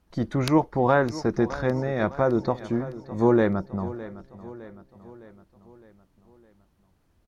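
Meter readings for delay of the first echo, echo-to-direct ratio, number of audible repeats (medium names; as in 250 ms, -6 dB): 610 ms, -14.5 dB, 4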